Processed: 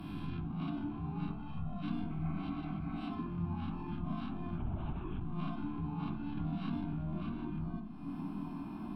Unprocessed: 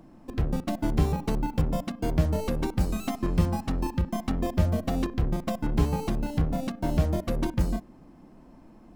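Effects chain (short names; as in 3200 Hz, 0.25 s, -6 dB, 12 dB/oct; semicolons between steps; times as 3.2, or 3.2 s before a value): spectral swells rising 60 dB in 0.81 s; treble ducked by the level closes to 1800 Hz, closed at -20 dBFS; 1.28–1.83 comb 1.6 ms, depth 72%; 2.13–2.98 spectral repair 230–2600 Hz after; compressor 2.5:1, threshold -47 dBFS, peak gain reduction 21.5 dB; limiter -39.5 dBFS, peak gain reduction 11 dB; reverb RT60 0.45 s, pre-delay 3 ms, DRR 0 dB; 4.58–5.21 LPC vocoder at 8 kHz whisper; fixed phaser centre 1900 Hz, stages 6; 6.37–6.93 three-band squash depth 70%; gain +7.5 dB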